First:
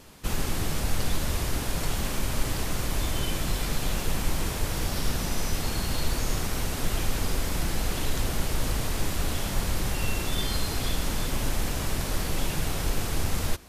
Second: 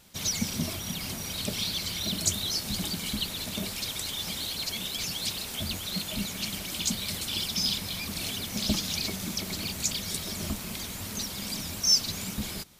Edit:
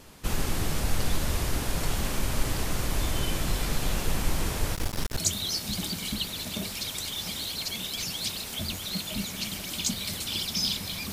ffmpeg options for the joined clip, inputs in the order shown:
-filter_complex "[0:a]asettb=1/sr,asplit=3[s0][s1][s2];[s0]atrim=end=4.744[s3];[s1]atrim=start=4.74:end=5.18,asetpts=PTS-STARTPTS,afade=t=in:d=0.004:c=qsin,afade=t=out:st=0.436:d=0.004:c=qsin,aeval=exprs='max(val(0),0)':c=same[s4];[s2]atrim=start=5.176[s5];[s3][s4]acrossfade=d=0.004:c1=hsin:c2=qsin[s6];[s6][s5]acrossfade=d=0.004:c1=qsin:c2=hsin,apad=whole_dur=11.12,atrim=end=11.12,atrim=end=5.182[s7];[1:a]atrim=start=2.188:end=8.13[s8];[s7][s8]acrossfade=d=0.004:c1=hsin:c2=hsin"

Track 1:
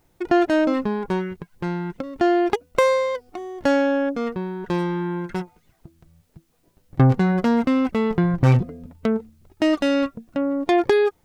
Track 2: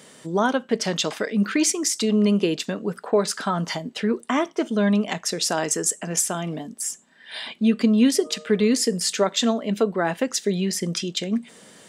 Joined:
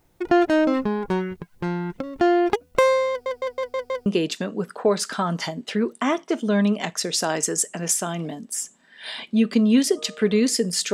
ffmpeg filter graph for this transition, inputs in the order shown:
-filter_complex "[0:a]apad=whole_dur=10.93,atrim=end=10.93,asplit=6[s0][s1][s2][s3][s4][s5];[s0]atrim=end=3.262[s6];[s1]atrim=start=3.098:end=3.262[s7];[s2]atrim=start=3.098:end=3.262[s8];[s3]atrim=start=3.098:end=3.262[s9];[s4]atrim=start=3.098:end=3.262[s10];[s5]atrim=start=3.098:end=3.262[s11];[1:a]atrim=start=2.338:end=9.21[s12];[s6][s7]acrossfade=d=0.004:c1=hsin:c2=hsin[s13];[s13][s8]acrossfade=d=0.004:c1=hsin:c2=hsin[s14];[s14][s9]acrossfade=d=0.004:c1=hsin:c2=hsin[s15];[s15][s10]acrossfade=d=0.004:c1=hsin:c2=hsin[s16];[s16][s11]acrossfade=d=0.004:c1=hsin:c2=hsin[s17];[s17][s12]acrossfade=d=0.004:c1=hsin:c2=hsin"

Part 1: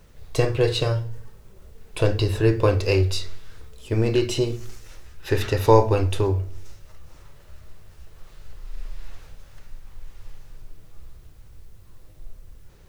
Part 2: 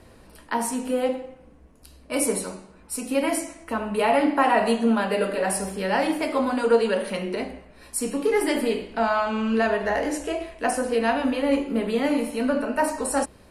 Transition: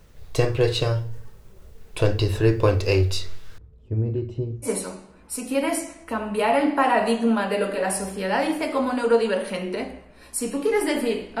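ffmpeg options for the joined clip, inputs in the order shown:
-filter_complex "[0:a]asettb=1/sr,asplit=3[s0][s1][s2];[s0]atrim=end=3.584[s3];[s1]atrim=start=3.58:end=4.7,asetpts=PTS-STARTPTS,afade=t=in:d=0.004:c=qsin,afade=t=out:st=1.116:d=0.004:c=qsin,bandpass=f=100:t=q:w=0.67:csg=0[s4];[s2]atrim=start=4.696[s5];[s3][s4]acrossfade=d=0.004:c1=hsin:c2=qsin[s6];[s6][s5]acrossfade=d=0.004:c1=qsin:c2=hsin,apad=whole_dur=11.4,atrim=end=11.4,atrim=end=4.7,asetpts=PTS-STARTPTS[s7];[1:a]atrim=start=2.22:end=9,asetpts=PTS-STARTPTS[s8];[s7][s8]acrossfade=d=0.08:c1=tri:c2=tri"

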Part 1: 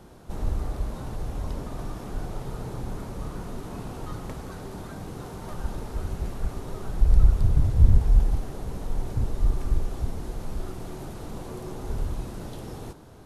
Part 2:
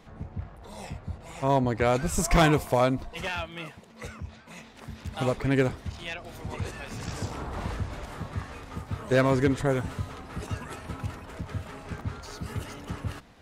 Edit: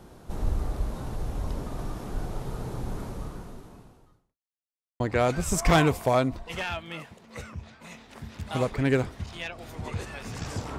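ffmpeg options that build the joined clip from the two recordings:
-filter_complex "[0:a]apad=whole_dur=10.78,atrim=end=10.78,asplit=2[s0][s1];[s0]atrim=end=4.39,asetpts=PTS-STARTPTS,afade=t=out:st=3.07:d=1.32:c=qua[s2];[s1]atrim=start=4.39:end=5,asetpts=PTS-STARTPTS,volume=0[s3];[1:a]atrim=start=1.66:end=7.44,asetpts=PTS-STARTPTS,afade=t=in:d=0.004:c=hsin[s4];[s2][s3][s4]concat=n=3:v=0:a=1"

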